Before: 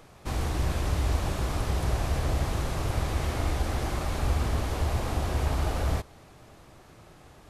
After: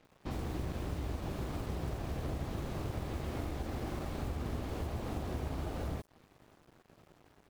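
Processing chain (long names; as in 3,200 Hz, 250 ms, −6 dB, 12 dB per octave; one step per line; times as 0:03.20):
running median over 5 samples
downward compressor 2.5 to 1, threshold −31 dBFS, peak gain reduction 7.5 dB
parametric band 250 Hz +10 dB 2.6 octaves
multiband delay without the direct sound lows, highs 50 ms, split 5,500 Hz
dead-zone distortion −46 dBFS
high-shelf EQ 3,700 Hz +8.5 dB
level −8.5 dB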